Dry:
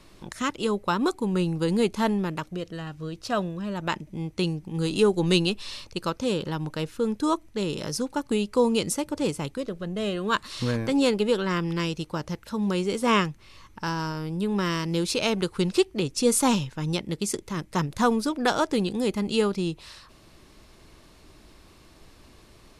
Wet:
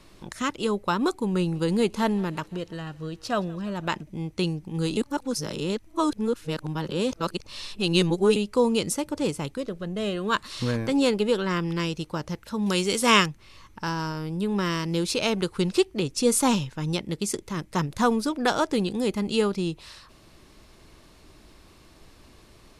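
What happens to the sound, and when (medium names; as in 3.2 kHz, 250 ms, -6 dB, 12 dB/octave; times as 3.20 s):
1.26–4.03 s: thinning echo 169 ms, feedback 69%, level -23 dB
4.97–8.36 s: reverse
12.66–13.26 s: treble shelf 2 kHz +11.5 dB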